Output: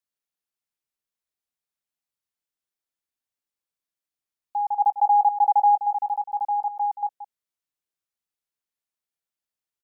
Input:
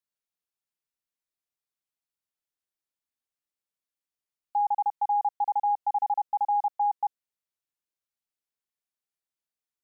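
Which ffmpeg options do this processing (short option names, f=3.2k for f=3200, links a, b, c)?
-filter_complex "[0:a]asplit=3[a][b][c];[a]afade=t=out:st=4.79:d=0.02[d];[b]equalizer=f=730:t=o:w=0.63:g=10,afade=t=in:st=4.79:d=0.02,afade=t=out:st=5.75:d=0.02[e];[c]afade=t=in:st=5.75:d=0.02[f];[d][e][f]amix=inputs=3:normalize=0,aecho=1:1:176:0.266"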